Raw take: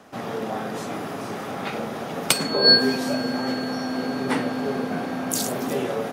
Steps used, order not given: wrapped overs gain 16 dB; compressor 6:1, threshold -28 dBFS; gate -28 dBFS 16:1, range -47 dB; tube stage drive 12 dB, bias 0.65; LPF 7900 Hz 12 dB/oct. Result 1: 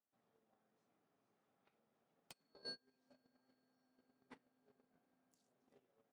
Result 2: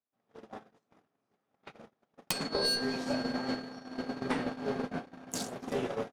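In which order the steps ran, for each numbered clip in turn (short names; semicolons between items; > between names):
LPF > compressor > wrapped overs > tube stage > gate; LPF > tube stage > gate > compressor > wrapped overs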